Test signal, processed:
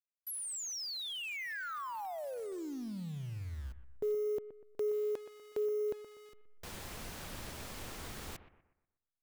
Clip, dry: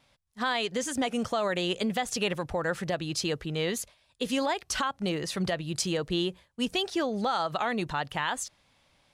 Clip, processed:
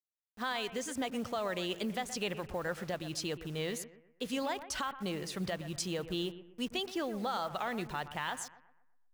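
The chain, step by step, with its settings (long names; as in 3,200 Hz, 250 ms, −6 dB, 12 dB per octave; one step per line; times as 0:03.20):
hold until the input has moved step −43 dBFS
bucket-brigade delay 122 ms, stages 2,048, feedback 38%, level −13 dB
level −7 dB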